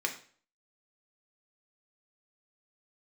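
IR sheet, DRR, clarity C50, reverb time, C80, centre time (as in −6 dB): 1.5 dB, 10.5 dB, 0.45 s, 14.0 dB, 13 ms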